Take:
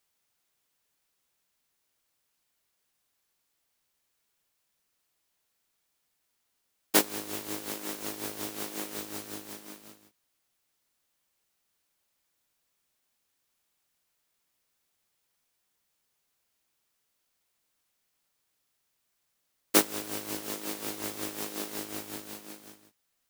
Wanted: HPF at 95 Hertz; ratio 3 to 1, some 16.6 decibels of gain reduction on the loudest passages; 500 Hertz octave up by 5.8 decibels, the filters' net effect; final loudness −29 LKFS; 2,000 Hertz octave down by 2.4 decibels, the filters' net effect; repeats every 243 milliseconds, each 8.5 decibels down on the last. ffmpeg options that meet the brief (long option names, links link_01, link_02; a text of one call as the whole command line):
ffmpeg -i in.wav -af "highpass=95,equalizer=frequency=500:width_type=o:gain=7.5,equalizer=frequency=2000:width_type=o:gain=-3.5,acompressor=threshold=-38dB:ratio=3,aecho=1:1:243|486|729|972:0.376|0.143|0.0543|0.0206,volume=11dB" out.wav